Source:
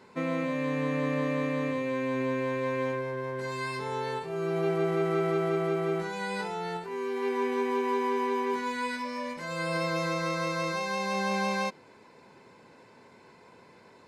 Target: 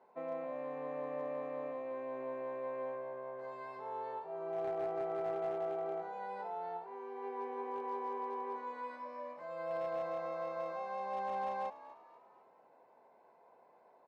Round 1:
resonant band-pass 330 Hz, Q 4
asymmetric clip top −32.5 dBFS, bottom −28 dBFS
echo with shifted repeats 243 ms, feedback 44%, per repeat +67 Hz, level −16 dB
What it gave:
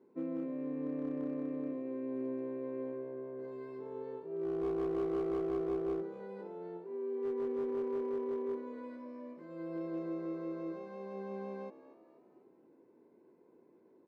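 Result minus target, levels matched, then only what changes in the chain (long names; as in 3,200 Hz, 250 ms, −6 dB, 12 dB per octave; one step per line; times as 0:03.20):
1,000 Hz band −13.0 dB
change: resonant band-pass 710 Hz, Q 4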